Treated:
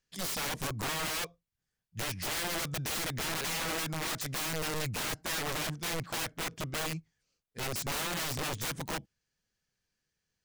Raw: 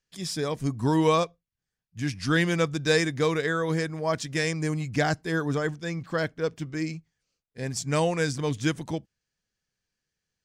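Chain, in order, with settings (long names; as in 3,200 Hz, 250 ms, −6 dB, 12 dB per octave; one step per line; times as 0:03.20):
downward compressor 3 to 1, threshold −26 dBFS, peak gain reduction 7.5 dB
wrap-around overflow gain 29.5 dB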